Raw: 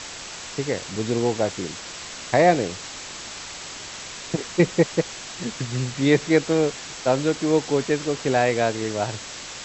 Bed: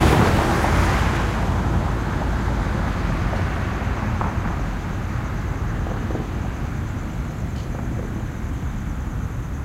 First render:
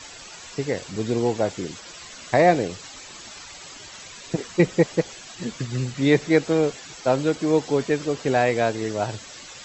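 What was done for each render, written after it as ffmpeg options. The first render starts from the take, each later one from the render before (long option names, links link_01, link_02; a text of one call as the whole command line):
ffmpeg -i in.wav -af "afftdn=noise_reduction=11:noise_floor=-37" out.wav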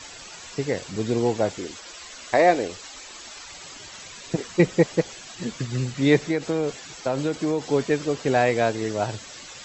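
ffmpeg -i in.wav -filter_complex "[0:a]asettb=1/sr,asplit=3[link_01][link_02][link_03];[link_01]atrim=end=1.584[link_04];[link_02]atrim=start=1.58:end=3.48,asetpts=PTS-STARTPTS,afade=type=in:duration=0.004:curve=qsin,afade=type=out:start_time=1.896:duration=0.004:curve=qsin,equalizer=frequency=140:width=1.5:gain=-14.5[link_05];[link_03]atrim=start=3.476[link_06];[link_04][link_05]acrossfade=duration=0.004:curve1=hsin:curve2=qsin[link_07];[link_07][link_06]acrossfade=duration=0.004:curve1=qsin:curve2=hsin,asettb=1/sr,asplit=3[link_08][link_09][link_10];[link_08]atrim=end=6.274[link_11];[link_09]atrim=start=6.27:end=7.66,asetpts=PTS-STARTPTS,afade=type=in:duration=0.004:curve=qsin,afade=type=out:start_time=1.386:duration=0.004:curve=qsin,acompressor=threshold=-19dB:ratio=6:attack=3.2:release=140:knee=1:detection=peak[link_12];[link_10]atrim=start=7.656[link_13];[link_11][link_12]acrossfade=duration=0.004:curve1=hsin:curve2=qsin[link_14];[link_14][link_13]acrossfade=duration=0.004:curve1=qsin:curve2=hsin" out.wav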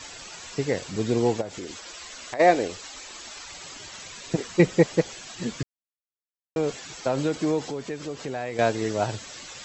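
ffmpeg -i in.wav -filter_complex "[0:a]asplit=3[link_01][link_02][link_03];[link_01]afade=type=out:start_time=1.4:duration=0.02[link_04];[link_02]acompressor=threshold=-31dB:ratio=5:attack=3.2:release=140:knee=1:detection=peak,afade=type=in:start_time=1.4:duration=0.02,afade=type=out:start_time=2.39:duration=0.02[link_05];[link_03]afade=type=in:start_time=2.39:duration=0.02[link_06];[link_04][link_05][link_06]amix=inputs=3:normalize=0,asettb=1/sr,asplit=3[link_07][link_08][link_09];[link_07]atrim=end=7.704[link_10];[link_08]atrim=start=7.7:end=8.59,asetpts=PTS-STARTPTS,afade=type=in:duration=0.004:curve=qsin,afade=type=out:start_time=0.886:duration=0.004:curve=qsin,acompressor=threshold=-33dB:ratio=2.5:attack=3.2:release=140:knee=1:detection=peak[link_11];[link_09]atrim=start=8.586[link_12];[link_10][link_11]acrossfade=duration=0.004:curve1=hsin:curve2=qsin[link_13];[link_13][link_12]acrossfade=duration=0.004:curve1=qsin:curve2=hsin,asplit=3[link_14][link_15][link_16];[link_14]atrim=end=5.63,asetpts=PTS-STARTPTS,afade=type=out:start_time=5.626:duration=0.004:curve=hsin[link_17];[link_15]atrim=start=5.63:end=6.56,asetpts=PTS-STARTPTS,volume=0[link_18];[link_16]atrim=start=6.56,asetpts=PTS-STARTPTS,afade=type=in:duration=0.004:curve=hsin[link_19];[link_17][link_18][link_19]concat=n=3:v=0:a=1" out.wav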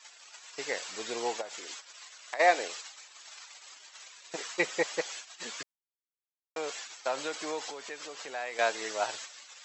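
ffmpeg -i in.wav -af "agate=range=-14dB:threshold=-39dB:ratio=16:detection=peak,highpass=840" out.wav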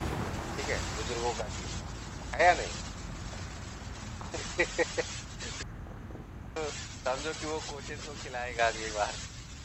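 ffmpeg -i in.wav -i bed.wav -filter_complex "[1:a]volume=-19dB[link_01];[0:a][link_01]amix=inputs=2:normalize=0" out.wav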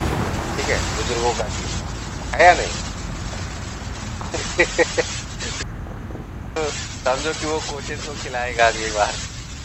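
ffmpeg -i in.wav -af "volume=12dB,alimiter=limit=-1dB:level=0:latency=1" out.wav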